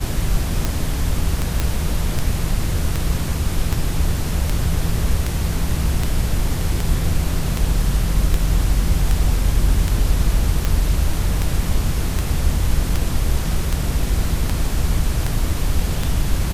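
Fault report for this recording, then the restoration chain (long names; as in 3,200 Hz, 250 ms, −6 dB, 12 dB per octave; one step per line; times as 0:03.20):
scratch tick 78 rpm
0:01.60: click −5 dBFS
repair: click removal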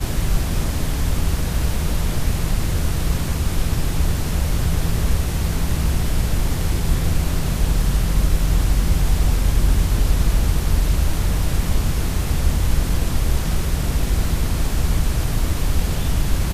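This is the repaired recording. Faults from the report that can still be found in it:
none of them is left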